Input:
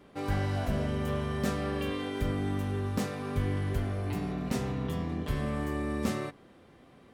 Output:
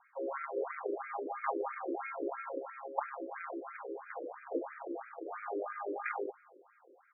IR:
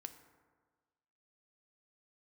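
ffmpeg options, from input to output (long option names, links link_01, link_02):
-af "asetrate=30296,aresample=44100,atempo=1.45565,lowshelf=frequency=100:width_type=q:width=1.5:gain=-13,aecho=1:1:232|464|696|928:0.1|0.052|0.027|0.0141,aeval=exprs='0.168*(cos(1*acos(clip(val(0)/0.168,-1,1)))-cos(1*PI/2))+0.0335*(cos(3*acos(clip(val(0)/0.168,-1,1)))-cos(3*PI/2))+0.00237*(cos(7*acos(clip(val(0)/0.168,-1,1)))-cos(7*PI/2))':channel_layout=same,afftfilt=real='re*between(b*sr/1024,410*pow(1800/410,0.5+0.5*sin(2*PI*3*pts/sr))/1.41,410*pow(1800/410,0.5+0.5*sin(2*PI*3*pts/sr))*1.41)':imag='im*between(b*sr/1024,410*pow(1800/410,0.5+0.5*sin(2*PI*3*pts/sr))/1.41,410*pow(1800/410,0.5+0.5*sin(2*PI*3*pts/sr))*1.41)':win_size=1024:overlap=0.75,volume=13dB"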